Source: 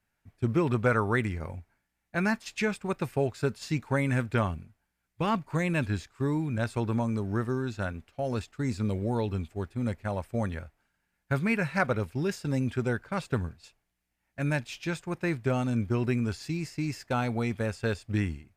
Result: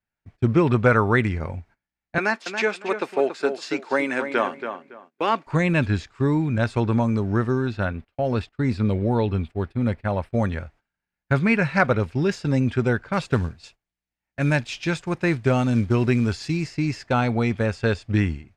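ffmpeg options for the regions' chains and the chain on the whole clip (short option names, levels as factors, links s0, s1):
-filter_complex "[0:a]asettb=1/sr,asplit=3[s0][s1][s2];[s0]atrim=end=2.184[s3];[s1]atrim=start=2.18:end=5.47,asetpts=PTS-STARTPTS,afade=t=in:d=0.004:c=qsin,afade=t=out:st=3.286:d=0.004:c=qsin,highpass=f=300:w=0.5412,highpass=f=300:w=1.3066,asplit=2[s4][s5];[s5]adelay=280,lowpass=f=3000:p=1,volume=0.398,asplit=2[s6][s7];[s7]adelay=280,lowpass=f=3000:p=1,volume=0.23,asplit=2[s8][s9];[s9]adelay=280,lowpass=f=3000:p=1,volume=0.23[s10];[s4][s6][s8][s10]amix=inputs=4:normalize=0,atrim=end_sample=145089[s11];[s2]atrim=start=5.466[s12];[s3][s11]acrossfade=d=0.004:c1=hsin:c2=qsin[s13];[s13][s12]acrossfade=d=0.004:c1=qsin:c2=hsin,asettb=1/sr,asplit=3[s14][s15][s16];[s14]atrim=end=7.674[s17];[s15]atrim=start=7.67:end=10.33,asetpts=PTS-STARTPTS,afade=t=in:d=0.004:c=qsin,afade=t=out:st=2.656:d=0.004:c=qsin,agate=range=0.141:threshold=0.00224:ratio=16:release=100:detection=peak,equalizer=f=6800:w=2.1:g=-10.5[s18];[s16]atrim=start=10.326[s19];[s17][s18]acrossfade=d=0.004:c1=hsin:c2=qsin[s20];[s20][s19]acrossfade=d=0.004:c1=qsin:c2=hsin,asettb=1/sr,asplit=3[s21][s22][s23];[s21]atrim=end=13.134[s24];[s22]atrim=start=13.13:end=16.64,asetpts=PTS-STARTPTS,afade=t=in:d=0.004:c=qsin,afade=t=out:st=3.506:d=0.004:c=qsin,highshelf=f=6600:g=7,acrusher=bits=7:mode=log:mix=0:aa=0.000001[s25];[s23]atrim=start=16.636[s26];[s24][s25]acrossfade=d=0.004:c1=hsin:c2=qsin[s27];[s27][s26]acrossfade=d=0.004:c1=qsin:c2=hsin,agate=range=0.158:threshold=0.00158:ratio=16:detection=peak,lowpass=5600,volume=2.37"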